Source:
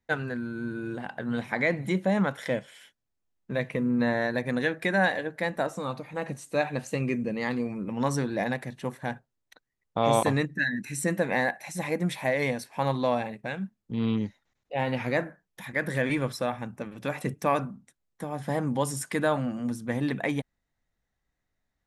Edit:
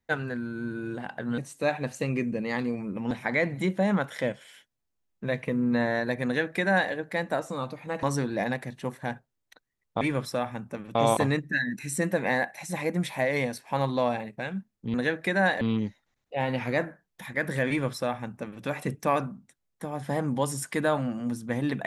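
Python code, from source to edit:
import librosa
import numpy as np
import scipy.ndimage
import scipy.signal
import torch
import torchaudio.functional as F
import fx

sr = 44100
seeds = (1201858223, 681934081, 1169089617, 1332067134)

y = fx.edit(x, sr, fx.duplicate(start_s=4.52, length_s=0.67, to_s=14.0),
    fx.move(start_s=6.3, length_s=1.73, to_s=1.38),
    fx.duplicate(start_s=16.08, length_s=0.94, to_s=10.01), tone=tone)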